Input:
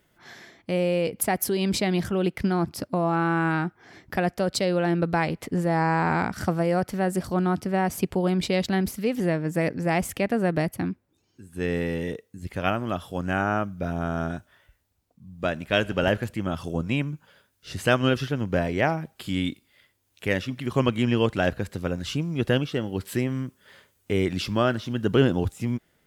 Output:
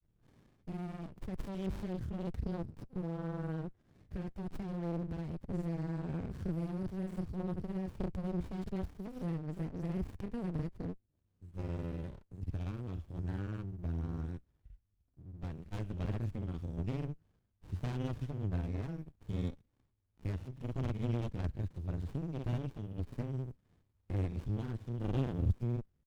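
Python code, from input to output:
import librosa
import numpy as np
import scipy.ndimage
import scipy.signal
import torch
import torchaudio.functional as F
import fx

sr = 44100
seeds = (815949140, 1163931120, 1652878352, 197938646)

y = fx.granulator(x, sr, seeds[0], grain_ms=100.0, per_s=20.0, spray_ms=38.0, spread_st=0)
y = fx.tone_stack(y, sr, knobs='10-0-1')
y = fx.running_max(y, sr, window=65)
y = F.gain(torch.from_numpy(y), 9.0).numpy()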